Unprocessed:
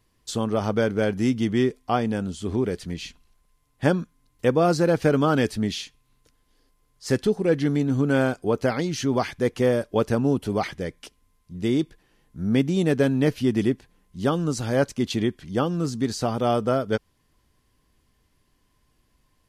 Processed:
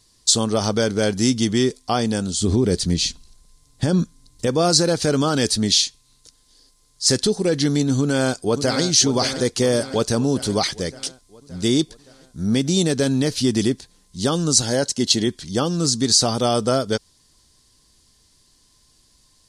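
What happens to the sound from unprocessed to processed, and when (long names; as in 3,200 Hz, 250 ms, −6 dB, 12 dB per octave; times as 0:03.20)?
0:02.41–0:04.47: low-shelf EQ 470 Hz +9 dB
0:07.99–0:08.83: delay throw 570 ms, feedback 60%, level −10.5 dB
0:14.62–0:15.27: notch comb filter 1,200 Hz
whole clip: brickwall limiter −13.5 dBFS; flat-topped bell 6,000 Hz +15.5 dB; level +3.5 dB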